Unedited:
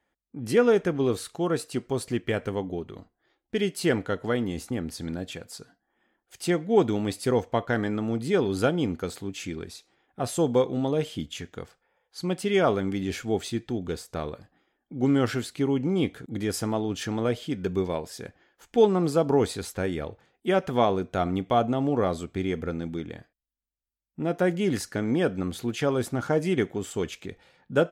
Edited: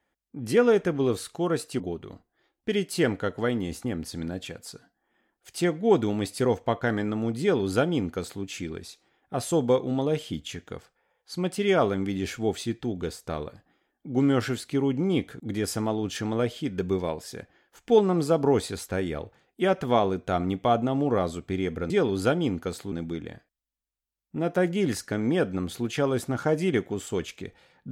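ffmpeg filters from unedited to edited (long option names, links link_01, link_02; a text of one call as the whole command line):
ffmpeg -i in.wav -filter_complex "[0:a]asplit=4[link_01][link_02][link_03][link_04];[link_01]atrim=end=1.802[link_05];[link_02]atrim=start=2.658:end=22.762[link_06];[link_03]atrim=start=8.268:end=9.292[link_07];[link_04]atrim=start=22.758[link_08];[link_05][link_06]acrossfade=duration=0.004:curve1=hsin:curve2=hsin[link_09];[link_09][link_07]acrossfade=duration=0.004:curve1=hsin:curve2=hsin[link_10];[link_10][link_08]acrossfade=duration=0.004:curve1=hsin:curve2=hsin" out.wav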